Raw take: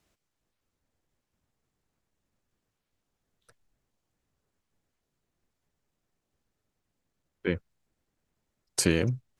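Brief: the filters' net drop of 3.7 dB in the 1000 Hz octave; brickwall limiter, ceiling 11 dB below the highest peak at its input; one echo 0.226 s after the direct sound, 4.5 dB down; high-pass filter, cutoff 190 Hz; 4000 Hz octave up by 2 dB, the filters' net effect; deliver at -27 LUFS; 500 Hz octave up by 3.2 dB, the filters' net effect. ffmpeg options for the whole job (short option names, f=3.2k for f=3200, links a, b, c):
-af "highpass=190,equalizer=f=500:t=o:g=5.5,equalizer=f=1k:t=o:g=-7.5,equalizer=f=4k:t=o:g=3,alimiter=limit=-20.5dB:level=0:latency=1,aecho=1:1:226:0.596,volume=8dB"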